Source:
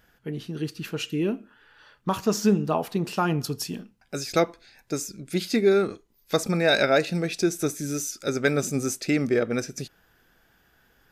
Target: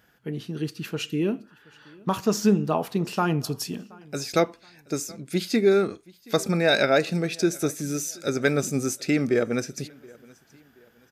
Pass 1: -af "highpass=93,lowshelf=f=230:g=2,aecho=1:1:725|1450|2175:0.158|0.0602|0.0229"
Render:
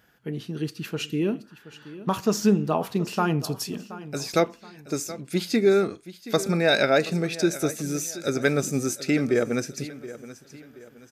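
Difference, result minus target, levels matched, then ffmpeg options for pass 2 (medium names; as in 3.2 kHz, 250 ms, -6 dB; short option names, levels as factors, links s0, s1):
echo-to-direct +9 dB
-af "highpass=93,lowshelf=f=230:g=2,aecho=1:1:725|1450:0.0562|0.0214"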